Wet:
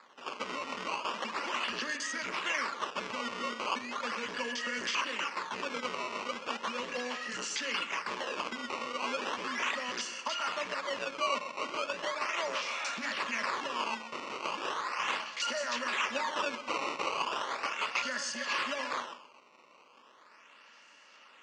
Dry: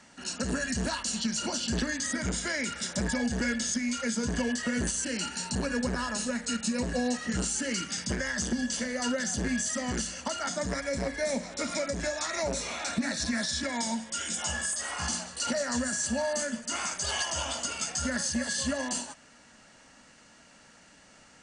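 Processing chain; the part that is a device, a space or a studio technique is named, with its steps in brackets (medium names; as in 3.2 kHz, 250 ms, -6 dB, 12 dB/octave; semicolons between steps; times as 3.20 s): 16.14–17.09 s: comb 7.4 ms, depth 94%; tape echo 127 ms, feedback 37%, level -9.5 dB, low-pass 3.1 kHz; circuit-bent sampling toy (decimation with a swept rate 15×, swing 160% 0.37 Hz; cabinet simulation 580–5900 Hz, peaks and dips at 720 Hz -9 dB, 1.1 kHz +6 dB, 1.6 kHz -3 dB, 2.7 kHz +6 dB, 3.9 kHz -5 dB)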